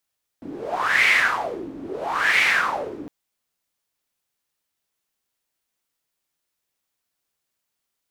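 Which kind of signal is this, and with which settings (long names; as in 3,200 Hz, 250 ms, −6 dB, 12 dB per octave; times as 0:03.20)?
wind from filtered noise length 2.66 s, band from 280 Hz, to 2,200 Hz, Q 6.2, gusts 2, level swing 17.5 dB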